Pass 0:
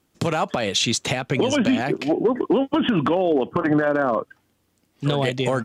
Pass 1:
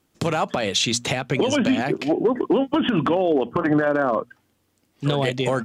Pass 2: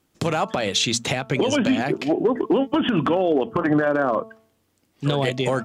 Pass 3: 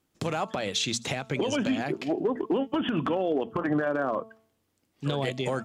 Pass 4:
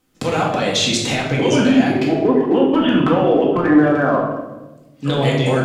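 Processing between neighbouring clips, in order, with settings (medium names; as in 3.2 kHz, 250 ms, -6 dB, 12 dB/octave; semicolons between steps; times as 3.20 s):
hum notches 60/120/180/240 Hz
de-hum 221.7 Hz, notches 6
feedback echo behind a high-pass 80 ms, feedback 42%, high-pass 4.5 kHz, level -21 dB; trim -7 dB
simulated room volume 510 m³, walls mixed, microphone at 2 m; trim +6.5 dB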